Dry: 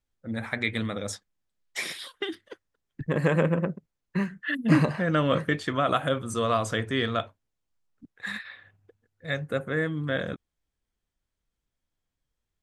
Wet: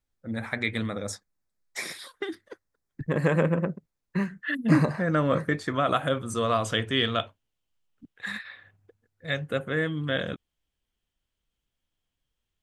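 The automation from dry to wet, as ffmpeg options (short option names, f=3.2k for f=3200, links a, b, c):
-af "asetnsamples=n=441:p=0,asendcmd='0.89 equalizer g -11.5;3.06 equalizer g -3;4.71 equalizer g -12;5.74 equalizer g -0.5;6.64 equalizer g 9.5;8.25 equalizer g -1;9.28 equalizer g 9',equalizer=f=3k:t=o:w=0.43:g=-2.5"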